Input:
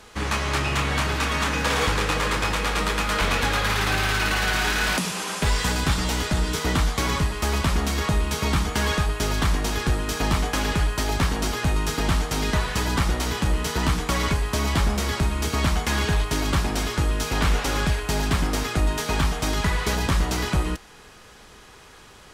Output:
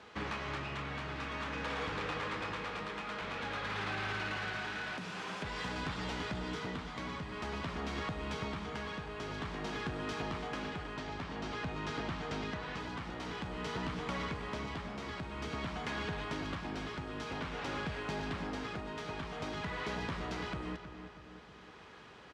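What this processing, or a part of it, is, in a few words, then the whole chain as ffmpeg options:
AM radio: -filter_complex "[0:a]asettb=1/sr,asplit=3[a][b][c];[a]atrim=end=10.964[d];[b]atrim=start=10.96:end=12.8,asetpts=PTS-STARTPTS,afade=t=in:d=0.004:c=qsin,afade=t=out:st=1.836:d=0.004:c=qsin,lowpass=8k[e];[c]atrim=start=12.796[f];[d][e]acrossfade=d=0.004:c1=hsin:c2=qsin[g];[g][f]acrossfade=d=0.004:c1=qsin:c2=hsin,highpass=110,lowpass=3.5k,acompressor=threshold=-28dB:ratio=6,asoftclip=type=tanh:threshold=-23.5dB,tremolo=f=0.5:d=0.36,asplit=2[h][i];[i]adelay=318,lowpass=f=3.3k:p=1,volume=-10dB,asplit=2[j][k];[k]adelay=318,lowpass=f=3.3k:p=1,volume=0.54,asplit=2[l][m];[m]adelay=318,lowpass=f=3.3k:p=1,volume=0.54,asplit=2[n][o];[o]adelay=318,lowpass=f=3.3k:p=1,volume=0.54,asplit=2[p][q];[q]adelay=318,lowpass=f=3.3k:p=1,volume=0.54,asplit=2[r][s];[s]adelay=318,lowpass=f=3.3k:p=1,volume=0.54[t];[h][j][l][n][p][r][t]amix=inputs=7:normalize=0,volume=-5.5dB"

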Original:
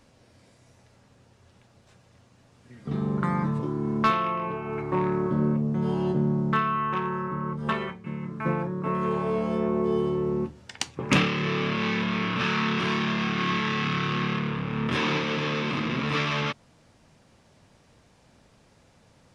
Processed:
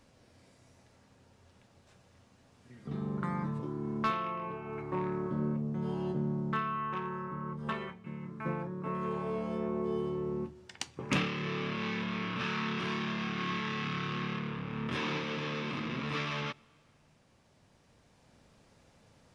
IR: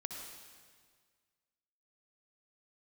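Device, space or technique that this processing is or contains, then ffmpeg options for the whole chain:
ducked reverb: -filter_complex "[0:a]asplit=3[a][b][c];[1:a]atrim=start_sample=2205[d];[b][d]afir=irnorm=-1:irlink=0[e];[c]apad=whole_len=853109[f];[e][f]sidechaincompress=threshold=-44dB:ratio=12:attack=7.9:release=1330,volume=0.5dB[g];[a][g]amix=inputs=2:normalize=0,volume=-9dB"

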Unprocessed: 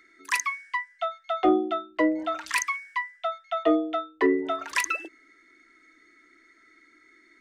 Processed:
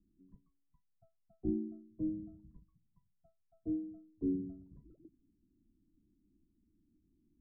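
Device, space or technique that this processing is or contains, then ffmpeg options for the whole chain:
the neighbour's flat through the wall: -af "lowpass=f=160:w=0.5412,lowpass=f=160:w=1.3066,equalizer=f=190:t=o:w=0.93:g=7,volume=9dB"

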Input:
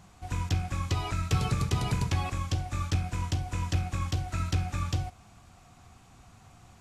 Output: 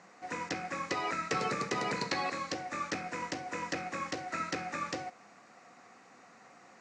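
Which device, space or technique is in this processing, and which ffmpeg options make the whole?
television speaker: -filter_complex "[0:a]highpass=f=220:w=0.5412,highpass=f=220:w=1.3066,equalizer=f=510:t=q:w=4:g=9,equalizer=f=1.3k:t=q:w=4:g=3,equalizer=f=1.9k:t=q:w=4:g=10,equalizer=f=3.3k:t=q:w=4:g=-9,lowpass=f=6.8k:w=0.5412,lowpass=f=6.8k:w=1.3066,asettb=1/sr,asplit=3[a][b][c];[a]atrim=end=1.964[d];[b]atrim=start=1.96:end=2.52,asetpts=PTS-STARTPTS,afade=t=in:d=0.004:c=qsin,afade=t=out:st=0.556:d=0.004:c=qsin,equalizer=f=4.2k:w=6.6:g=13.5[e];[c]atrim=start=2.516[f];[d][e]acrossfade=d=0.004:c1=hsin:c2=qsin[g];[g][f]acrossfade=d=0.004:c1=qsin:c2=hsin"

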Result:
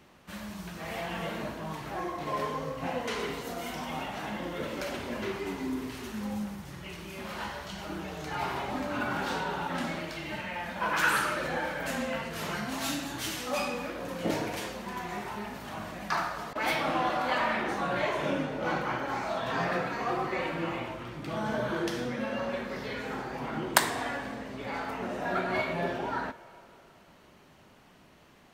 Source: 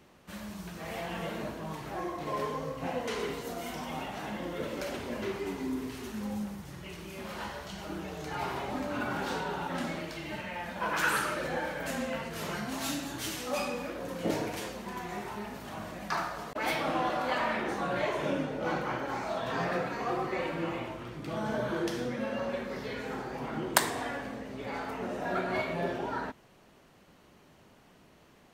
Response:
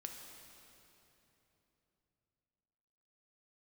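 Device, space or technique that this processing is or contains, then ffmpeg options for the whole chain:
filtered reverb send: -filter_complex "[0:a]asplit=2[a][b];[b]highpass=f=410:w=0.5412,highpass=f=410:w=1.3066,lowpass=5.6k[c];[1:a]atrim=start_sample=2205[d];[c][d]afir=irnorm=-1:irlink=0,volume=-7dB[e];[a][e]amix=inputs=2:normalize=0,volume=1dB"

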